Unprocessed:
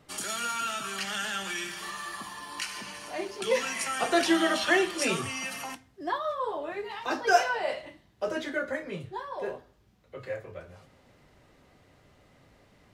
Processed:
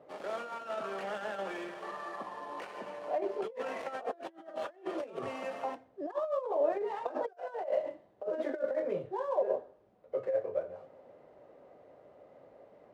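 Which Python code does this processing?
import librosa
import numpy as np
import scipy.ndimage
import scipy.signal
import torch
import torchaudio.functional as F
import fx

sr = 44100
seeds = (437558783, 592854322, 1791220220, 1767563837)

y = fx.dead_time(x, sr, dead_ms=0.1)
y = fx.over_compress(y, sr, threshold_db=-35.0, ratio=-0.5)
y = fx.bandpass_q(y, sr, hz=560.0, q=2.7)
y = y * librosa.db_to_amplitude(7.0)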